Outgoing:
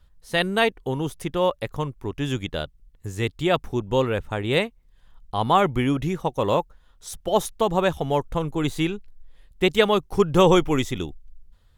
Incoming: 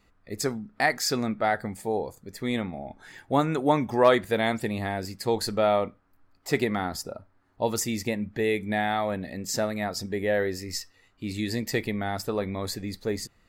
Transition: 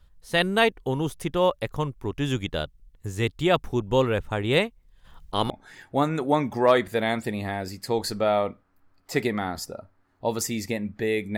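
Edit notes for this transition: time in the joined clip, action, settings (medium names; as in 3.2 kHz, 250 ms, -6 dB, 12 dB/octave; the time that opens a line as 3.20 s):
outgoing
5.04–5.50 s: spectral peaks clipped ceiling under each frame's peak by 13 dB
5.50 s: go over to incoming from 2.87 s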